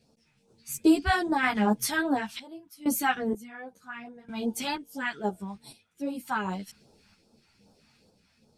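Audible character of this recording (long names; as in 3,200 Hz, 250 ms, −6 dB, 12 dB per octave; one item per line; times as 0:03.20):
phaser sweep stages 2, 2.5 Hz, lowest notch 430–2,000 Hz
sample-and-hold tremolo 2.1 Hz, depth 90%
a shimmering, thickened sound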